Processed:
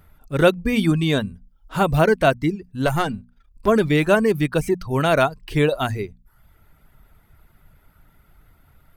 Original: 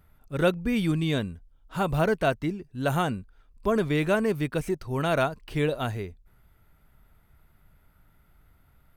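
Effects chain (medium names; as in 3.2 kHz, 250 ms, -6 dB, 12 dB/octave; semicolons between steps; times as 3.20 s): 2.86–3.68 s: partial rectifier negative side -7 dB; reverb removal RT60 0.57 s; hum notches 60/120/180/240 Hz; trim +8 dB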